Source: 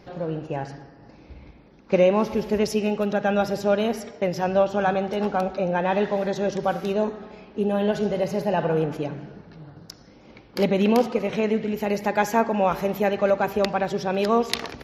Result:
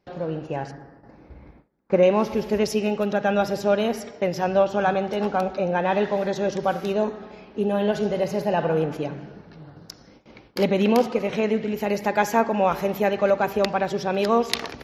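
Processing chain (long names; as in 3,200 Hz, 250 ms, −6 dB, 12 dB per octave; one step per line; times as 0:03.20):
low-shelf EQ 230 Hz −2.5 dB
noise gate with hold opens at −40 dBFS
0:00.71–0:02.03: flat-topped bell 4,000 Hz −10.5 dB
level +1 dB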